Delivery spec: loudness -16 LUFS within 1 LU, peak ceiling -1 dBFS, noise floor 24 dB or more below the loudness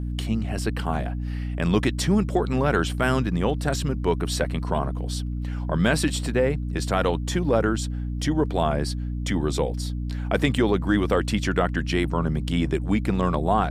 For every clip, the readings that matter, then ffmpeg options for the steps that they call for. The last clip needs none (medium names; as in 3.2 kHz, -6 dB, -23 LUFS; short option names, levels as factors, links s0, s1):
hum 60 Hz; highest harmonic 300 Hz; hum level -26 dBFS; loudness -24.5 LUFS; peak level -7.5 dBFS; loudness target -16.0 LUFS
-> -af "bandreject=f=60:t=h:w=6,bandreject=f=120:t=h:w=6,bandreject=f=180:t=h:w=6,bandreject=f=240:t=h:w=6,bandreject=f=300:t=h:w=6"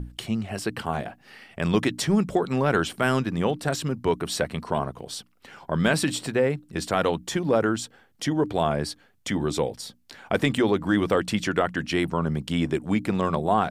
hum not found; loudness -25.5 LUFS; peak level -8.0 dBFS; loudness target -16.0 LUFS
-> -af "volume=2.99,alimiter=limit=0.891:level=0:latency=1"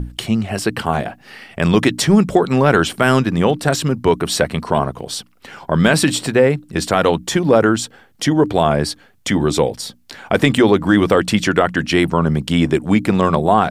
loudness -16.5 LUFS; peak level -1.0 dBFS; noise floor -50 dBFS